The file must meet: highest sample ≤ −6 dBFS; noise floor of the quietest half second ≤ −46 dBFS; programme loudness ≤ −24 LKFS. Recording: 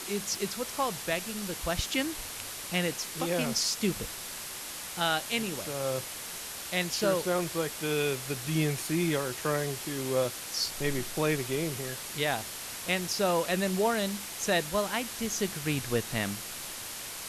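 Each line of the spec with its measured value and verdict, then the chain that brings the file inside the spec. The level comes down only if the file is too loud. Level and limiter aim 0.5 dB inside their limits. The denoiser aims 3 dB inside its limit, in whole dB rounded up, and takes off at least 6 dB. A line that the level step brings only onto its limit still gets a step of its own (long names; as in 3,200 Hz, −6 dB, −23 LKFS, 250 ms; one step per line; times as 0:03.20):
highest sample −15.5 dBFS: in spec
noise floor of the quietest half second −40 dBFS: out of spec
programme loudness −31.0 LKFS: in spec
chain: broadband denoise 9 dB, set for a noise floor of −40 dBFS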